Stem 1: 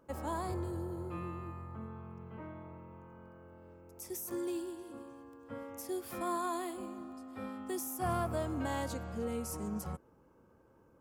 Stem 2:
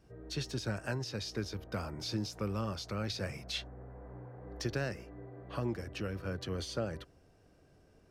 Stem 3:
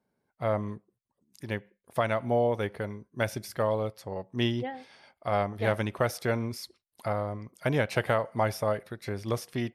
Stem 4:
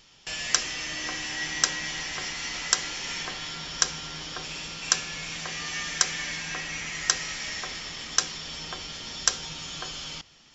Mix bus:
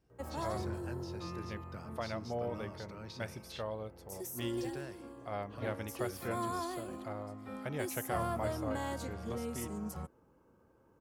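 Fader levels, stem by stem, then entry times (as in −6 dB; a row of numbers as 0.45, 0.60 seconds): −2.0 dB, −11.0 dB, −12.5 dB, muted; 0.10 s, 0.00 s, 0.00 s, muted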